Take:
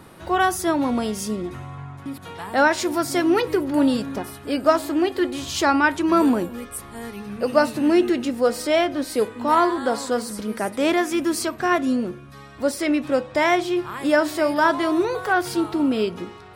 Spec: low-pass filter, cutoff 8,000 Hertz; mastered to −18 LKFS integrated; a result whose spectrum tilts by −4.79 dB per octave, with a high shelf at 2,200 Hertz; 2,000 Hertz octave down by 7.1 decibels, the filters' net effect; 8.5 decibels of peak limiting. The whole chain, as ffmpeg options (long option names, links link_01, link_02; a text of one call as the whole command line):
ffmpeg -i in.wav -af "lowpass=8000,equalizer=frequency=2000:width_type=o:gain=-8,highshelf=frequency=2200:gain=-4.5,volume=6.5dB,alimiter=limit=-7.5dB:level=0:latency=1" out.wav